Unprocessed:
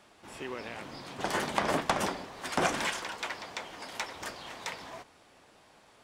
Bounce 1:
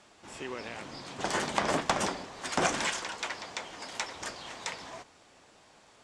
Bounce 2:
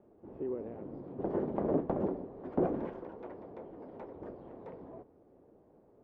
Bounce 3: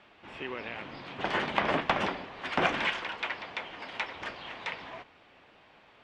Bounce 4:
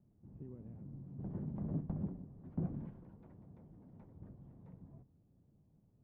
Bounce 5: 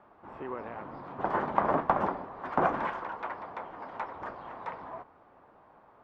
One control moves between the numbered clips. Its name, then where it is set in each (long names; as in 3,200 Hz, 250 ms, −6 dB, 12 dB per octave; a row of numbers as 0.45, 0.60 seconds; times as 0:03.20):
low-pass with resonance, frequency: 7,600, 420, 2,800, 150, 1,100 Hertz